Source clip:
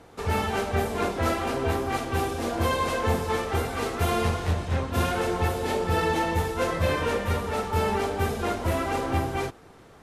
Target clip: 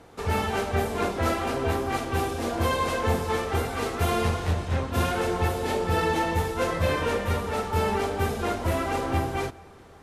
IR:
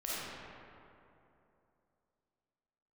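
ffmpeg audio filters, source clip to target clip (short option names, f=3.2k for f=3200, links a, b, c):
-filter_complex "[0:a]asplit=2[a][b];[1:a]atrim=start_sample=2205,adelay=47[c];[b][c]afir=irnorm=-1:irlink=0,volume=-27dB[d];[a][d]amix=inputs=2:normalize=0"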